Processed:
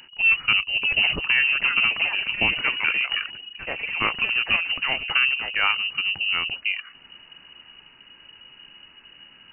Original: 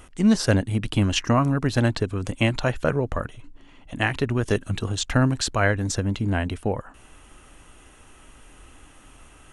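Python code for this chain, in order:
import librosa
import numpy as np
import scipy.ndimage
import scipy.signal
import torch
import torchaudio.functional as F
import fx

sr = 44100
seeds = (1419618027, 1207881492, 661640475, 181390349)

y = fx.echo_pitch(x, sr, ms=673, semitones=5, count=3, db_per_echo=-6.0)
y = fx.freq_invert(y, sr, carrier_hz=2900)
y = F.gain(torch.from_numpy(y), -1.5).numpy()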